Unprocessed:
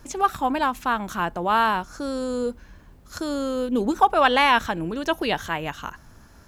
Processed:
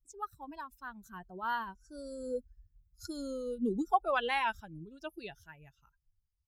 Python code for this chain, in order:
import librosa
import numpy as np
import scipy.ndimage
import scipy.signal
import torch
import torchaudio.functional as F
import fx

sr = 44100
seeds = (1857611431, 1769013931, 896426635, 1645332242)

y = fx.bin_expand(x, sr, power=2.0)
y = fx.doppler_pass(y, sr, speed_mps=17, closest_m=11.0, pass_at_s=2.87)
y = y * librosa.db_to_amplitude(-3.0)